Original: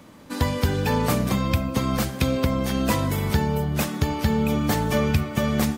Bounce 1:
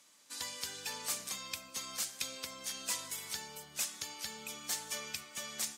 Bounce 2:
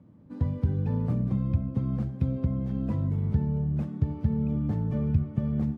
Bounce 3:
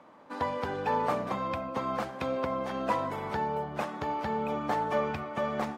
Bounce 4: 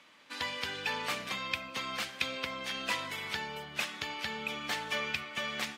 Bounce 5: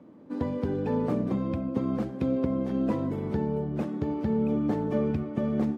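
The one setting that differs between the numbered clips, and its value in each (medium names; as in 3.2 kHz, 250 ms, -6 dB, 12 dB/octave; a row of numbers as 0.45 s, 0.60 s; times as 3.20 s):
band-pass filter, frequency: 7.3 kHz, 120 Hz, 860 Hz, 2.7 kHz, 320 Hz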